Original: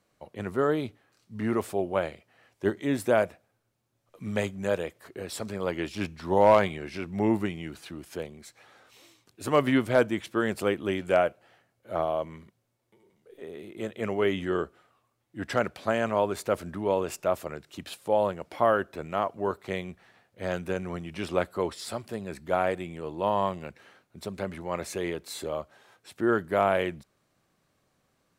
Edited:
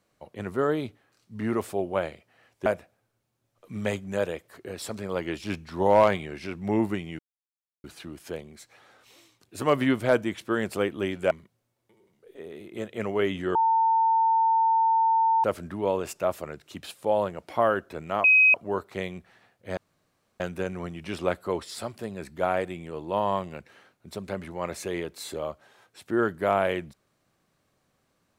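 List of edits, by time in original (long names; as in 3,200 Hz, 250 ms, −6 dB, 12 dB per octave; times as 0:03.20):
0:02.66–0:03.17: remove
0:07.70: splice in silence 0.65 s
0:11.17–0:12.34: remove
0:14.58–0:16.47: beep over 900 Hz −18.5 dBFS
0:19.27: insert tone 2,530 Hz −14 dBFS 0.30 s
0:20.50: splice in room tone 0.63 s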